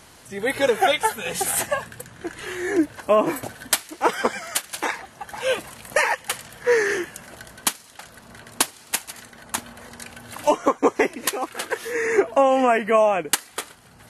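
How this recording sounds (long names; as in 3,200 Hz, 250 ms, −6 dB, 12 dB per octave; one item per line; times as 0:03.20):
background noise floor −49 dBFS
spectral slope −3.0 dB per octave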